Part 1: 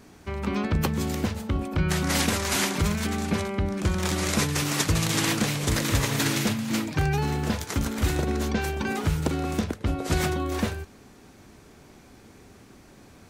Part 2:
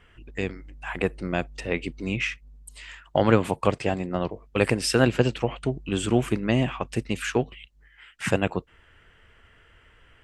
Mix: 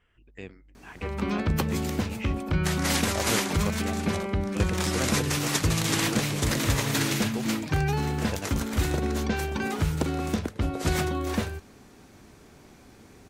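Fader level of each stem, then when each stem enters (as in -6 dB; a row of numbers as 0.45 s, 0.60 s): -1.0 dB, -12.5 dB; 0.75 s, 0.00 s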